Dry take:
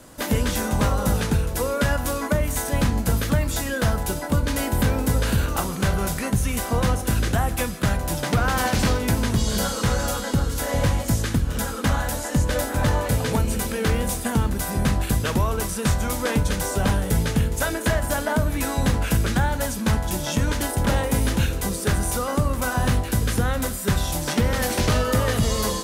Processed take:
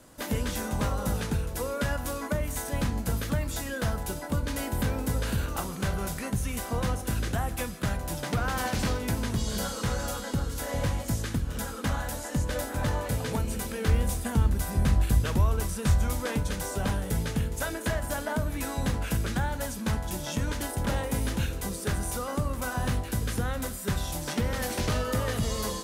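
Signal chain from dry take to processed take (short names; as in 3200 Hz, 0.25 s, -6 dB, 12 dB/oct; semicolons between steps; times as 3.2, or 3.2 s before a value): 13.88–16.2 bell 62 Hz +9.5 dB 1.7 oct; gain -7.5 dB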